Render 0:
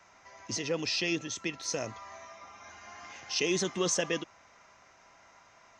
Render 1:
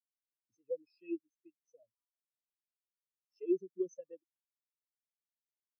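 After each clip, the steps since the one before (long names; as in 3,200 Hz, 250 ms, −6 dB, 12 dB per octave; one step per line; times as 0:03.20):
every bin expanded away from the loudest bin 4 to 1
level −5.5 dB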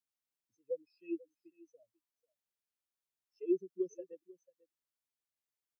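single-tap delay 492 ms −21 dB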